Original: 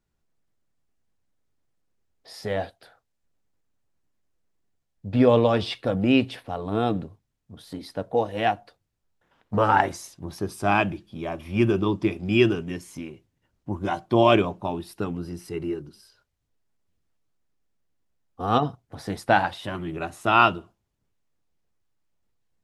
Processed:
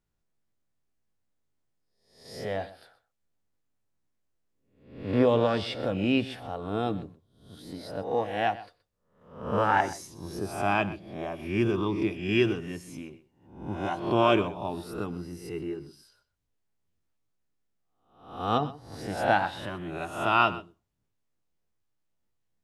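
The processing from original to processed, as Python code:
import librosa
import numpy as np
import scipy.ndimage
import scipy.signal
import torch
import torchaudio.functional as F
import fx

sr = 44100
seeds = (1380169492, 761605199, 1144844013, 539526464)

y = fx.spec_swells(x, sr, rise_s=0.58)
y = y + 10.0 ** (-17.0 / 20.0) * np.pad(y, (int(125 * sr / 1000.0), 0))[:len(y)]
y = y * 10.0 ** (-6.0 / 20.0)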